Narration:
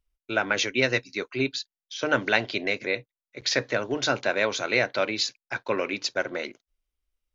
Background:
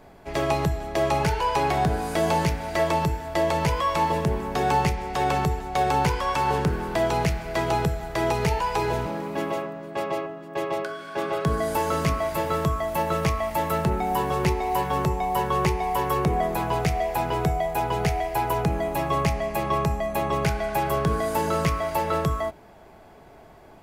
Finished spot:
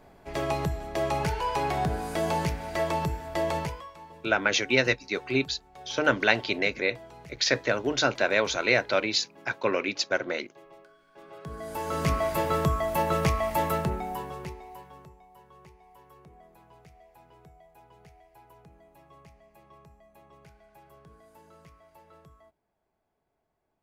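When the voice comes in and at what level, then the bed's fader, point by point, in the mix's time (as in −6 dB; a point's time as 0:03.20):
3.95 s, +0.5 dB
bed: 0:03.58 −5 dB
0:03.94 −24.5 dB
0:11.13 −24.5 dB
0:12.13 −1 dB
0:13.65 −1 dB
0:15.28 −30.5 dB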